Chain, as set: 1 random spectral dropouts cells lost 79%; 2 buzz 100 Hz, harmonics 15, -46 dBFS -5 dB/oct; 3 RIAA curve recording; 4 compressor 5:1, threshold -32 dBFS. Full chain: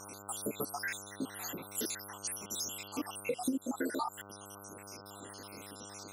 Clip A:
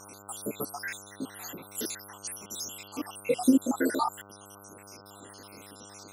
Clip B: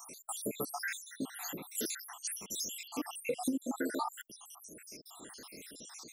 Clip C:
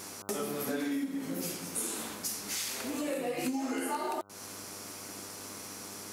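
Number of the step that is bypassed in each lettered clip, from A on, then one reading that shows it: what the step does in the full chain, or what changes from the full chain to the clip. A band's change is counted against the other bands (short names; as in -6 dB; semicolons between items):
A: 4, mean gain reduction 1.5 dB; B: 2, 125 Hz band -3.0 dB; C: 1, 2 kHz band -3.0 dB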